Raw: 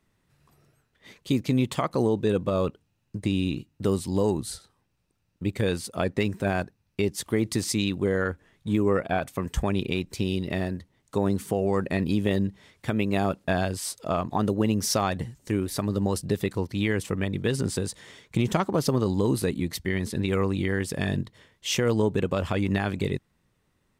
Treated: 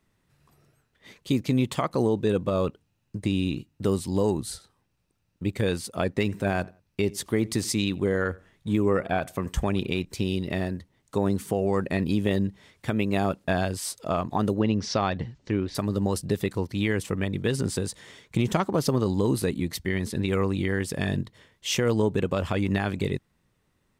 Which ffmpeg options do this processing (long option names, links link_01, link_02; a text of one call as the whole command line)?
ffmpeg -i in.wav -filter_complex "[0:a]asettb=1/sr,asplit=3[link_01][link_02][link_03];[link_01]atrim=end=6.154[link_04];[link_02]atrim=start=6.15:end=10.05,asetpts=PTS-STARTPTS,afade=type=in:duration=0.004:curve=qsin,afade=type=out:start_time=3.896:duration=0.004:curve=qsin,asplit=2[link_05][link_06];[link_06]adelay=87,lowpass=frequency=2500:poles=1,volume=-22.5dB,asplit=2[link_07][link_08];[link_08]adelay=87,lowpass=frequency=2500:poles=1,volume=0.27[link_09];[link_05][link_07][link_09]amix=inputs=3:normalize=0,atrim=end_sample=171990[link_10];[link_03]atrim=start=10.046[link_11];[link_04][link_10]acrossfade=duration=0.004:curve1=hsin:curve2=qsin[link_12];[link_12][link_11]acrossfade=duration=0.004:curve1=qsin:curve2=hsin,asettb=1/sr,asplit=3[link_13][link_14][link_15];[link_13]atrim=end=14.594[link_16];[link_14]atrim=start=14.59:end=15.75,asetpts=PTS-STARTPTS,afade=type=in:duration=0.004:curve=qsin,afade=type=out:start_time=1.156:duration=0.004:curve=qsin,lowpass=frequency=5000:width=0.5412,lowpass=frequency=5000:width=1.3066[link_17];[link_15]atrim=start=15.746[link_18];[link_16][link_17]acrossfade=duration=0.004:curve1=hsin:curve2=qsin[link_19];[link_19][link_18]acrossfade=duration=0.004:curve1=qsin:curve2=hsin" out.wav